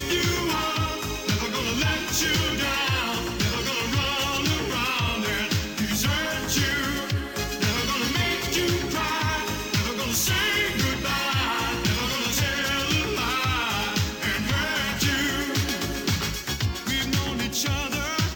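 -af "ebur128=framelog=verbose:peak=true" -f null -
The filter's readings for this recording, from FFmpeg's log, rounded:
Integrated loudness:
  I:         -24.3 LUFS
  Threshold: -34.3 LUFS
Loudness range:
  LRA:         1.4 LU
  Threshold: -44.2 LUFS
  LRA low:   -25.0 LUFS
  LRA high:  -23.6 LUFS
True peak:
  Peak:      -10.1 dBFS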